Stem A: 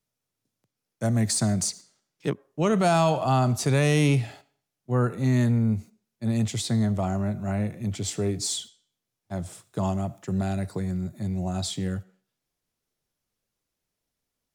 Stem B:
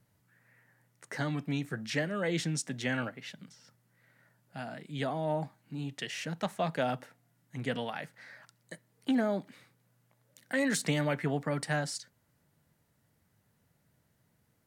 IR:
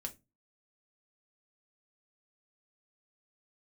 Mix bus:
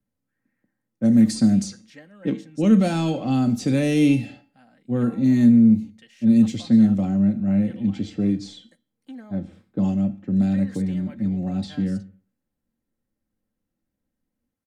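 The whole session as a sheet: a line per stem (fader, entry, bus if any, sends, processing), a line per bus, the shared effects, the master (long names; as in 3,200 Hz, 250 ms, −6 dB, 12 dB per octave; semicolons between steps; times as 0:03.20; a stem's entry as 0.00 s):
+1.5 dB, 0.00 s, send −3.5 dB, octave-band graphic EQ 250/1,000/8,000 Hz +8/−11/−5 dB; low-pass that shuts in the quiet parts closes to 1,100 Hz, open at −16 dBFS; tuned comb filter 65 Hz, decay 0.37 s, harmonics odd, mix 60%
−16.0 dB, 0.00 s, no send, no processing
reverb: on, pre-delay 3 ms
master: low-shelf EQ 240 Hz +4 dB; comb filter 3.8 ms, depth 54%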